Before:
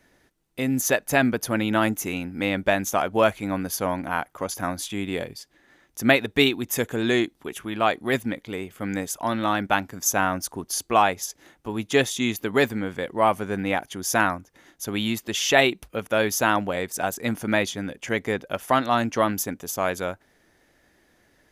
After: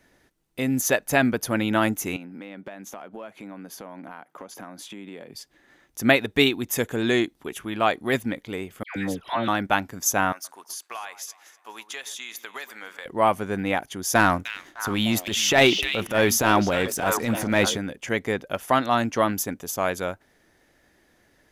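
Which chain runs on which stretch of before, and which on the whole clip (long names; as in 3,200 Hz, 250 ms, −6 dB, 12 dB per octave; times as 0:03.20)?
0:02.16–0:05.34: high-pass filter 160 Hz 24 dB per octave + high-shelf EQ 3,500 Hz −9 dB + downward compressor, threshold −36 dBFS
0:08.83–0:09.48: high shelf with overshoot 4,800 Hz −9.5 dB, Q 1.5 + all-pass dispersion lows, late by 129 ms, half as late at 1,300 Hz
0:10.32–0:13.06: high-pass filter 1,000 Hz + downward compressor 5 to 1, threshold −32 dBFS + delay that swaps between a low-pass and a high-pass 124 ms, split 1,900 Hz, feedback 61%, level −14 dB
0:14.15–0:17.78: echo through a band-pass that steps 302 ms, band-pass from 3,200 Hz, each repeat −1.4 octaves, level −6 dB + transient designer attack −10 dB, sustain +4 dB + leveller curve on the samples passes 1
whole clip: no processing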